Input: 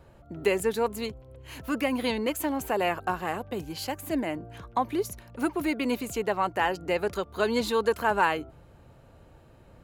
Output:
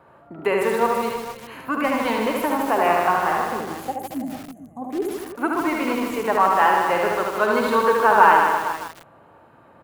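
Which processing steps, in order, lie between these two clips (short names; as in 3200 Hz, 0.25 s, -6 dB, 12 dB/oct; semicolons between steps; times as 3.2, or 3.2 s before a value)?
spectral gain 3.39–5.15, 860–6000 Hz -14 dB; HPF 180 Hz 12 dB/oct; spectral gain 3.92–4.82, 280–5800 Hz -16 dB; EQ curve 490 Hz 0 dB, 1100 Hz +9 dB, 6000 Hz -12 dB, 11000 Hz -6 dB; on a send: tapped delay 47/74/114/327/450 ms -14/-3/-11/-12.5/-13 dB; on the sum: lo-fi delay 0.154 s, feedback 35%, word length 6-bit, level -4.5 dB; gain +2 dB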